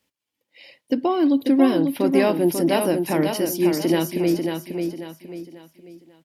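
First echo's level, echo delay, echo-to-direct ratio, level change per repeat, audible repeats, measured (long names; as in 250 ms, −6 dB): −5.5 dB, 542 ms, −5.0 dB, −9.0 dB, 4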